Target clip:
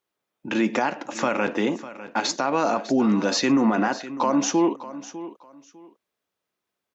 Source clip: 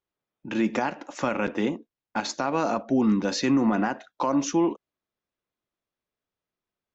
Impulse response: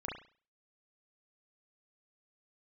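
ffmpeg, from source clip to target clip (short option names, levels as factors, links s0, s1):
-filter_complex "[0:a]highpass=f=260:p=1,asplit=2[s0][s1];[s1]alimiter=limit=0.0708:level=0:latency=1:release=56,volume=1.26[s2];[s0][s2]amix=inputs=2:normalize=0,aecho=1:1:601|1202:0.178|0.0409"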